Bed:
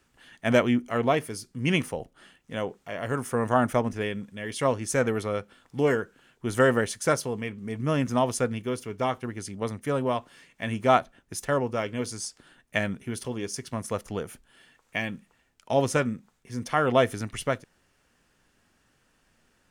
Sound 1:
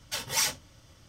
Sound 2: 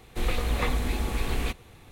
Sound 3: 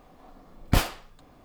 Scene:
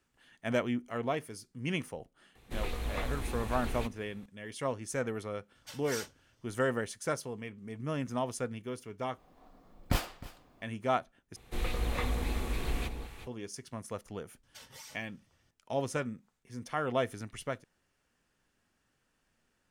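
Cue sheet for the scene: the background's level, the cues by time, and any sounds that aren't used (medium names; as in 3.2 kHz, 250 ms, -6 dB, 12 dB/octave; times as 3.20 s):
bed -9.5 dB
2.35 s: add 2 -9 dB
5.55 s: add 1 -14.5 dB
9.18 s: replace with 3 -8 dB + delay 310 ms -18 dB
11.36 s: replace with 2 -6.5 dB + echo whose repeats swap between lows and highs 185 ms, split 940 Hz, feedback 56%, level -6 dB
14.43 s: add 1 -16 dB + compression 12:1, threshold -29 dBFS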